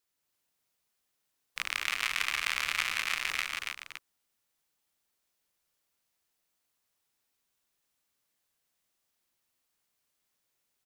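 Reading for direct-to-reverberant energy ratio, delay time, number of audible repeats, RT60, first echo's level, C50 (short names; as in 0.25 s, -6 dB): none, 0.141 s, 5, none, -16.0 dB, none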